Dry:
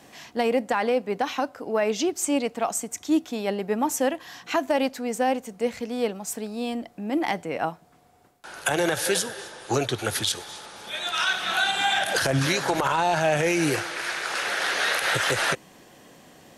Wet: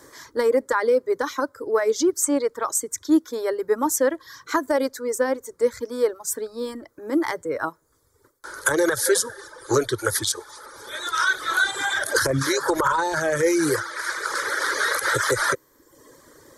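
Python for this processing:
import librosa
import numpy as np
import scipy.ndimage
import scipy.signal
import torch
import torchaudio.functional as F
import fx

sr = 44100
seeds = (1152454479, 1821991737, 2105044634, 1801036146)

y = fx.fixed_phaser(x, sr, hz=730.0, stages=6)
y = fx.dereverb_blind(y, sr, rt60_s=0.85)
y = F.gain(torch.from_numpy(y), 6.5).numpy()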